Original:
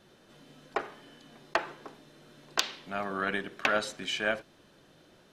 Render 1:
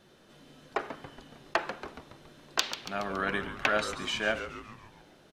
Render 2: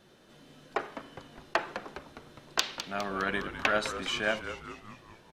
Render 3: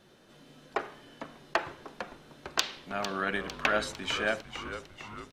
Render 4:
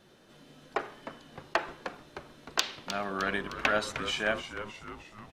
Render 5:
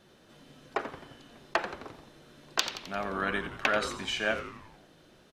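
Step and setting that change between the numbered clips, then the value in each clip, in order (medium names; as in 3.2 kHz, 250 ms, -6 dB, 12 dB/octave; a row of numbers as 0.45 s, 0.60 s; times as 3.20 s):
frequency-shifting echo, time: 140 ms, 205 ms, 452 ms, 307 ms, 87 ms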